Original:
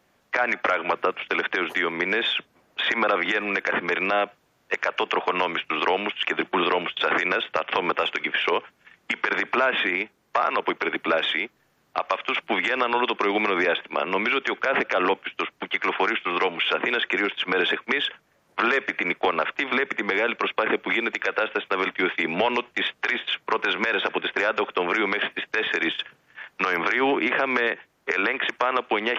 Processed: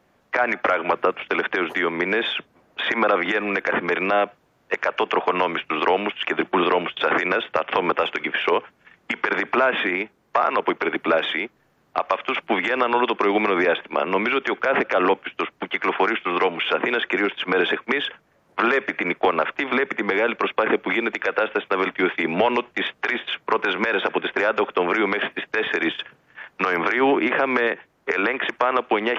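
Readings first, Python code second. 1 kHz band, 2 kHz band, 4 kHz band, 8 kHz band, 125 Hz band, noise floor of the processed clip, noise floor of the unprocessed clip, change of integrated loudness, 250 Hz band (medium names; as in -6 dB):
+3.0 dB, +0.5 dB, -1.5 dB, no reading, +4.5 dB, -62 dBFS, -66 dBFS, +2.0 dB, +4.5 dB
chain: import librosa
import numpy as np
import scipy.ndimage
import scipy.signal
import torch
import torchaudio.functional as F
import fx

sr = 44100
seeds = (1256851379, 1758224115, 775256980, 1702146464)

y = fx.high_shelf(x, sr, hz=2100.0, db=-8.5)
y = y * 10.0 ** (4.5 / 20.0)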